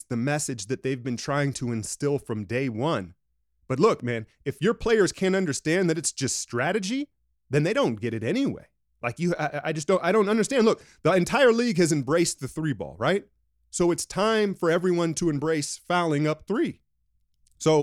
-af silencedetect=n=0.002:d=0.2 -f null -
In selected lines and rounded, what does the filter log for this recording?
silence_start: 3.13
silence_end: 3.69 | silence_duration: 0.56
silence_start: 7.05
silence_end: 7.50 | silence_duration: 0.45
silence_start: 8.66
silence_end: 9.02 | silence_duration: 0.36
silence_start: 13.26
silence_end: 13.72 | silence_duration: 0.46
silence_start: 16.77
silence_end: 17.46 | silence_duration: 0.69